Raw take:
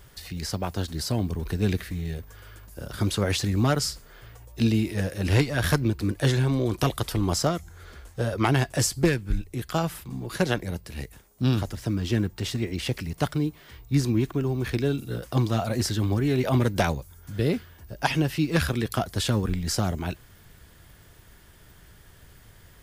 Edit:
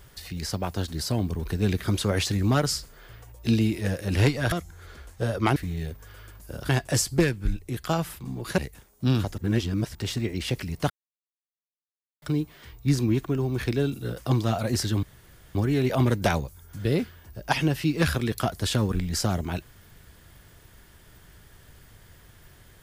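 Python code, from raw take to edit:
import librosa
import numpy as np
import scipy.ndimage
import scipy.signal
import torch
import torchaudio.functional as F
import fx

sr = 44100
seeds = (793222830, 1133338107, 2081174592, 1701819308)

y = fx.edit(x, sr, fx.move(start_s=1.84, length_s=1.13, to_s=8.54),
    fx.cut(start_s=5.65, length_s=1.85),
    fx.cut(start_s=10.43, length_s=0.53),
    fx.reverse_span(start_s=11.76, length_s=0.57),
    fx.insert_silence(at_s=13.28, length_s=1.32),
    fx.insert_room_tone(at_s=16.09, length_s=0.52), tone=tone)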